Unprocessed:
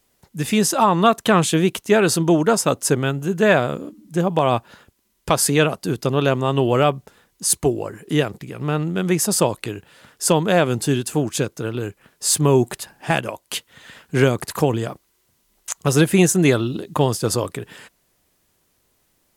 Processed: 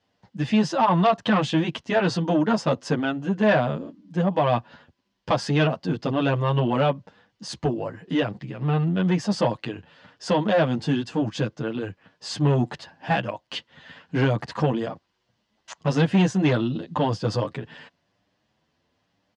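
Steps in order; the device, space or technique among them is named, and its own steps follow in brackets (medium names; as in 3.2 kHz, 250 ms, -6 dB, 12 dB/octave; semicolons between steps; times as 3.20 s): barber-pole flanger into a guitar amplifier (endless flanger 8.4 ms +1 Hz; saturation -13.5 dBFS, distortion -15 dB; cabinet simulation 93–4400 Hz, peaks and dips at 390 Hz -9 dB, 1.3 kHz -5 dB, 2.3 kHz -6 dB, 3.8 kHz -5 dB); trim +3 dB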